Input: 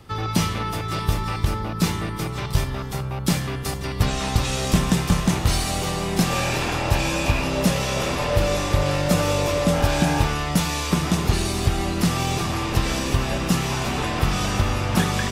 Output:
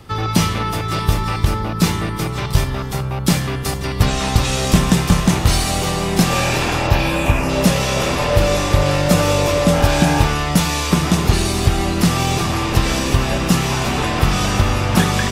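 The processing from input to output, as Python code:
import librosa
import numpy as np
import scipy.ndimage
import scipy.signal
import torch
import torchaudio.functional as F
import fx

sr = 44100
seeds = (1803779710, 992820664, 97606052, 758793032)

y = fx.peak_eq(x, sr, hz=fx.line((6.86, 10000.0), (7.48, 3500.0)), db=-14.5, octaves=0.63, at=(6.86, 7.48), fade=0.02)
y = F.gain(torch.from_numpy(y), 5.5).numpy()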